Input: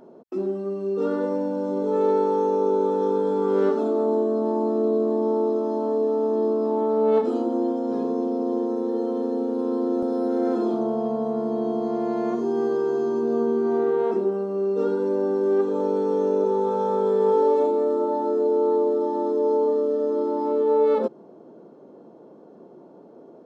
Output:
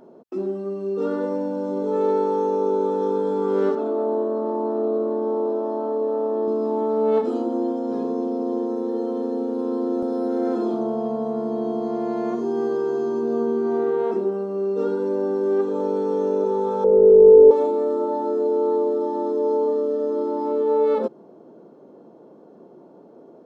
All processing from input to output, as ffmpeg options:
-filter_complex "[0:a]asettb=1/sr,asplit=3[s0][s1][s2];[s0]atrim=end=3.754[s3];[s1]atrim=start=3.75:end=6.48,asetpts=PTS-STARTPTS,afade=t=in:d=0.004:c=qsin,afade=t=out:st=2.726:d=0.004:c=qsin,bass=f=250:g=-7,treble=f=4000:g=-12,asplit=7[s4][s5][s6][s7][s8][s9][s10];[s5]adelay=116,afreqshift=110,volume=0.133[s11];[s6]adelay=232,afreqshift=220,volume=0.0841[s12];[s7]adelay=348,afreqshift=330,volume=0.0531[s13];[s8]adelay=464,afreqshift=440,volume=0.0335[s14];[s9]adelay=580,afreqshift=550,volume=0.0209[s15];[s10]adelay=696,afreqshift=660,volume=0.0132[s16];[s4][s11][s12][s13][s14][s15][s16]amix=inputs=7:normalize=0,atrim=end_sample=120393[s17];[s2]atrim=start=6.476[s18];[s3][s17]acrossfade=d=0.004:c1=hsin:c2=qsin[s19];[s19][s18]acrossfade=d=0.004:c1=qsin:c2=hsin,asettb=1/sr,asplit=3[s20][s21][s22];[s20]atrim=end=16.844[s23];[s21]atrim=start=16.84:end=17.51,asetpts=PTS-STARTPTS,afade=t=in:d=0.004:c=qsin,afade=t=out:st=0.666:d=0.004:c=qsin,aeval=exprs='clip(val(0),-1,0.119)':c=same,lowpass=f=460:t=q:w=3.7[s24];[s22]atrim=start=17.506[s25];[s23][s24]acrossfade=d=0.004:c1=hsin:c2=qsin[s26];[s26][s25]acrossfade=d=0.004:c1=qsin:c2=hsin"

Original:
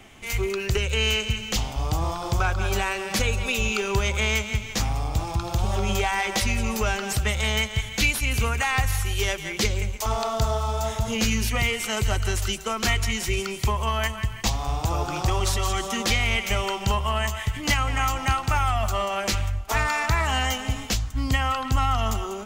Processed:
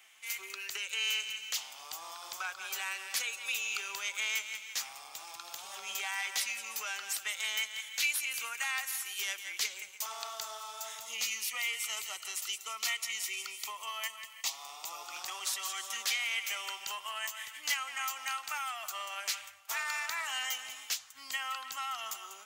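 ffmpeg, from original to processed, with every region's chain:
-filter_complex "[0:a]asettb=1/sr,asplit=3[s0][s1][s2];[s0]atrim=end=11.034[s3];[s1]atrim=start=11.03:end=15.14,asetpts=PTS-STARTPTS,afade=t=in:d=0.004:c=qsin,afade=t=out:st=4.106:d=0.004:c=qsin,asuperstop=centerf=1600:order=4:qfactor=4.7,equalizer=f=67:w=1.4:g=-12.5[s4];[s2]atrim=start=15.136[s5];[s3][s4]acrossfade=d=0.004:c1=hsin:c2=qsin[s6];[s6][s5]acrossfade=d=0.004:c1=qsin:c2=hsin,highpass=1400,highshelf=f=9200:g=8,volume=0.398"

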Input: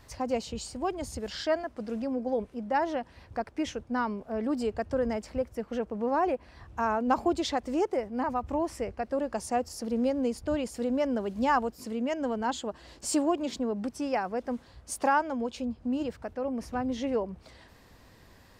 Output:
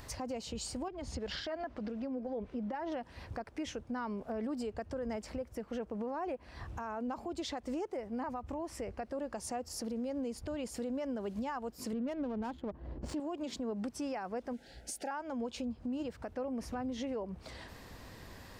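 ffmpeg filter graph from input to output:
-filter_complex "[0:a]asettb=1/sr,asplit=3[s0][s1][s2];[s0]atrim=end=0.884[s3];[s1]atrim=start=0.88:end=2.92,asetpts=PTS-STARTPTS,afade=t=in:d=0.004:c=qsin,afade=t=out:st=2.036:d=0.004:c=qsin,lowpass=4300,acompressor=threshold=0.0141:ratio=4:attack=3.2:release=140:knee=1:detection=peak,aphaser=in_gain=1:out_gain=1:delay=4.3:decay=0.27:speed=2:type=sinusoidal[s4];[s2]atrim=start=2.916[s5];[s3][s4]acrossfade=d=0.004:c1=hsin:c2=qsin[s6];[s6][s5]acrossfade=d=0.004:c1=qsin:c2=hsin,asettb=1/sr,asplit=3[s7][s8][s9];[s7]atrim=end=11.934[s10];[s8]atrim=start=11.93:end=13.2,asetpts=PTS-STARTPTS,afade=t=in:d=0.004:c=qsin,afade=t=out:st=1.266:d=0.004:c=qsin,lowshelf=f=350:g=10.5,adynamicsmooth=sensitivity=4.5:basefreq=730[s11];[s9]atrim=start=13.196[s12];[s10][s11]acrossfade=d=0.004:c1=hsin:c2=qsin[s13];[s13][s12]acrossfade=d=0.004:c1=qsin:c2=hsin,asettb=1/sr,asplit=3[s14][s15][s16];[s14]atrim=end=14.534[s17];[s15]atrim=start=14.53:end=15.11,asetpts=PTS-STARTPTS,afade=t=in:d=0.004:c=qsin,afade=t=out:st=0.576:d=0.004:c=qsin,asuperstop=centerf=1100:order=12:qfactor=2.3,equalizer=f=88:w=1.2:g=-13[s18];[s16]atrim=start=15.106[s19];[s17][s18]acrossfade=d=0.004:c1=hsin:c2=qsin[s20];[s20][s19]acrossfade=d=0.004:c1=qsin:c2=hsin,acompressor=threshold=0.00708:ratio=2,alimiter=level_in=3.76:limit=0.0631:level=0:latency=1:release=143,volume=0.266,acompressor=mode=upward:threshold=0.00126:ratio=2.5,volume=1.78"

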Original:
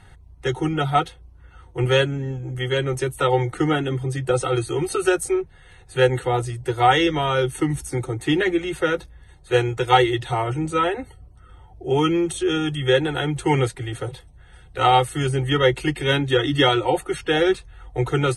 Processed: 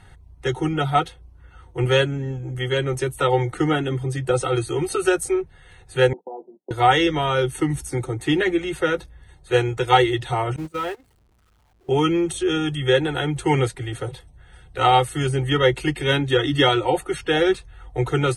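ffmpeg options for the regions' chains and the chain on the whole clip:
-filter_complex "[0:a]asettb=1/sr,asplit=3[s0][s1][s2];[s0]atrim=end=6.134[s3];[s1]atrim=start=6.13:end=6.71,asetpts=PTS-STARTPTS,afade=t=in:d=0.004:c=qsin,afade=t=out:st=0.576:d=0.004:c=qsin,agate=range=0.0224:threshold=0.0355:ratio=16:release=100:detection=peak,acompressor=threshold=0.02:ratio=3:attack=3.2:release=140:knee=1:detection=peak,asuperpass=centerf=430:order=20:qfactor=0.54[s4];[s2]atrim=start=6.706[s5];[s3][s4]acrossfade=d=0.004:c1=hsin:c2=qsin[s6];[s6][s5]acrossfade=d=0.004:c1=qsin:c2=hsin,asettb=1/sr,asplit=3[s7][s8][s9];[s7]atrim=end=10.564[s10];[s8]atrim=start=10.56:end=11.89,asetpts=PTS-STARTPTS,afade=t=in:d=0.004:c=qsin,afade=t=out:st=1.326:d=0.004:c=qsin,aeval=exprs='val(0)+0.5*0.0355*sgn(val(0))':c=same,agate=range=0.0447:threshold=0.0708:ratio=16:release=100:detection=peak,acompressor=threshold=0.0158:ratio=1.5:attack=3.2:release=140:knee=1:detection=peak[s11];[s9]atrim=start=11.886[s12];[s10][s11]acrossfade=d=0.004:c1=hsin:c2=qsin[s13];[s13][s12]acrossfade=d=0.004:c1=qsin:c2=hsin"

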